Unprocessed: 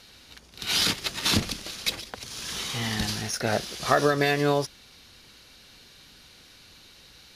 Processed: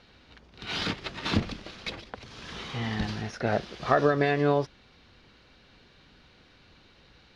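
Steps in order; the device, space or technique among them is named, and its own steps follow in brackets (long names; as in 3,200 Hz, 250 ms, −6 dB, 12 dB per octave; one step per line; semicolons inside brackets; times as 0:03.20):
phone in a pocket (low-pass filter 3,900 Hz 12 dB per octave; high-shelf EQ 2,400 Hz −9 dB)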